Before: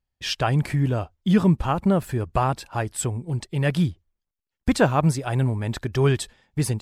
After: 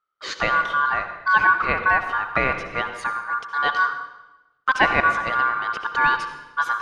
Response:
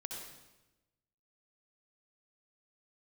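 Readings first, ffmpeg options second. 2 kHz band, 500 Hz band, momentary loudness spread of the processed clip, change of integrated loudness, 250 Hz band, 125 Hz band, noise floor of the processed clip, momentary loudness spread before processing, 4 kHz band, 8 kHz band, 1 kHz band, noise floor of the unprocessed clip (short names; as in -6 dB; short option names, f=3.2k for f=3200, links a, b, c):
+14.5 dB, -5.0 dB, 10 LU, +2.5 dB, -14.0 dB, -19.0 dB, -63 dBFS, 9 LU, +0.5 dB, under -10 dB, +9.0 dB, -85 dBFS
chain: -filter_complex "[0:a]lowpass=3.3k,aeval=exprs='val(0)*sin(2*PI*1300*n/s)':c=same,asplit=2[a][b];[1:a]atrim=start_sample=2205[c];[b][c]afir=irnorm=-1:irlink=0,volume=0dB[d];[a][d]amix=inputs=2:normalize=0,volume=-1dB"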